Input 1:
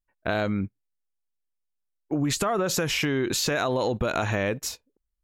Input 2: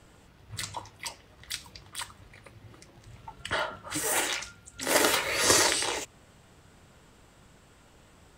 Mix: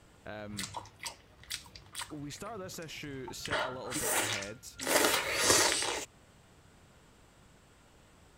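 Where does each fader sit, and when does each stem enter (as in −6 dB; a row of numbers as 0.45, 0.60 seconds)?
−17.5, −3.5 decibels; 0.00, 0.00 seconds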